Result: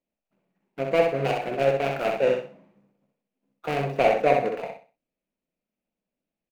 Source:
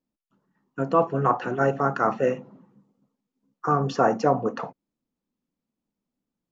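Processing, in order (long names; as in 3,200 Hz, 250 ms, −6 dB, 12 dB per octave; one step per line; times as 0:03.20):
running median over 41 samples
graphic EQ with 15 bands 100 Hz −11 dB, 250 Hz −5 dB, 630 Hz +10 dB, 2,500 Hz +11 dB
on a send: repeating echo 64 ms, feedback 28%, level −4.5 dB
on the sum: level −2.5 dB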